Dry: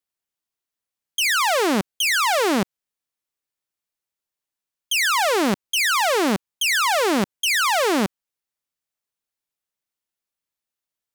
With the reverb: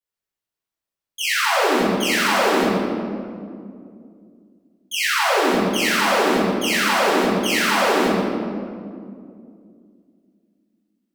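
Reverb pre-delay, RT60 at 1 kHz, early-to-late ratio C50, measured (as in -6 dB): 4 ms, 2.0 s, -3.5 dB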